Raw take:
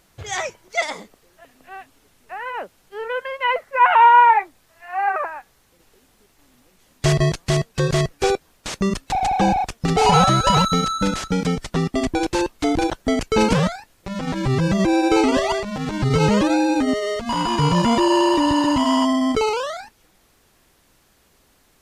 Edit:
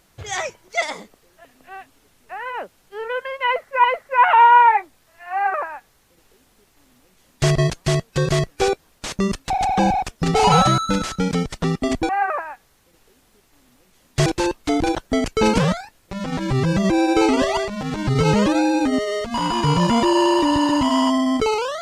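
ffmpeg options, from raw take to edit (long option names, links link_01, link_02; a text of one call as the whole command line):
ffmpeg -i in.wav -filter_complex "[0:a]asplit=5[link_01][link_02][link_03][link_04][link_05];[link_01]atrim=end=3.842[link_06];[link_02]atrim=start=3.458:end=10.402[link_07];[link_03]atrim=start=10.898:end=12.212[link_08];[link_04]atrim=start=4.948:end=7.122[link_09];[link_05]atrim=start=12.208[link_10];[link_06][link_07]acrossfade=duration=0.004:curve1=hsin:curve2=hsin[link_11];[link_11][link_08]acrossfade=duration=0.004:curve1=hsin:curve2=hsin[link_12];[link_12][link_09]acrossfade=duration=0.004:curve1=hsin:curve2=hsin[link_13];[link_13][link_10]acrossfade=duration=0.004:curve1=hsin:curve2=hsin" out.wav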